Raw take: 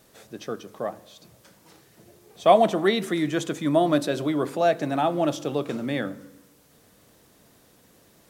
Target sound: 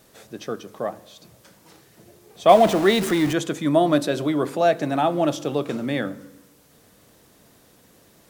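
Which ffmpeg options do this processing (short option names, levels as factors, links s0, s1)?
-filter_complex "[0:a]asettb=1/sr,asplit=3[s0][s1][s2];[s0]atrim=end=2.494[s3];[s1]atrim=start=2.49:end=3.33,asetpts=PTS-STARTPTS,afade=t=in:d=0.004:c=qsin,afade=t=out:st=0.836:d=0.004:c=qsin,aeval=exprs='val(0)+0.5*0.0422*sgn(val(0))':c=same[s4];[s2]atrim=start=3.326[s5];[s3][s4]acrossfade=d=0.004:c1=hsin:c2=qsin[s6];[s6][s5]acrossfade=d=0.004:c1=qsin:c2=hsin,volume=1.33"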